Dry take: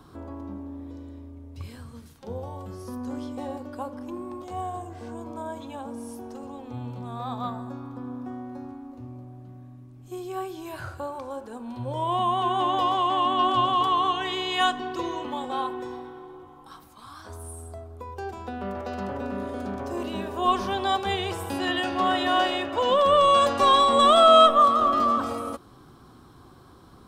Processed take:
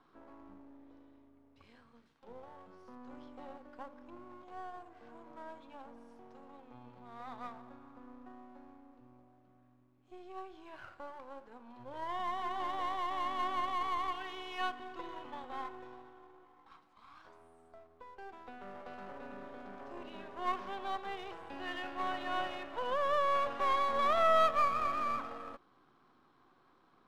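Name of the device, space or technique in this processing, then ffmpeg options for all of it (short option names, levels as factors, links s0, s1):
crystal radio: -filter_complex "[0:a]acrossover=split=3300[s0][s1];[s1]acompressor=threshold=0.00501:ratio=4:attack=1:release=60[s2];[s0][s2]amix=inputs=2:normalize=0,highpass=290,lowpass=2900,aeval=exprs='if(lt(val(0),0),0.447*val(0),val(0))':c=same,equalizer=f=400:t=o:w=1.8:g=-4.5,volume=0.376"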